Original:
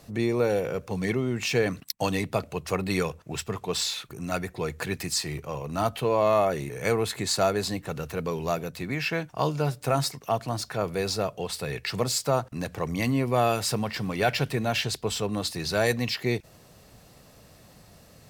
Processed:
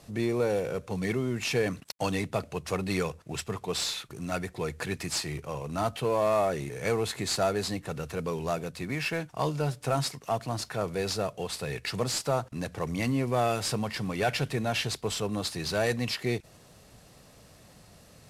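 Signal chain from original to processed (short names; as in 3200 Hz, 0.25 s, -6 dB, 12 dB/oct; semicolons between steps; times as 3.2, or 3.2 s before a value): CVSD 64 kbps; in parallel at -3.5 dB: soft clip -21.5 dBFS, distortion -12 dB; on the sum: gain -6 dB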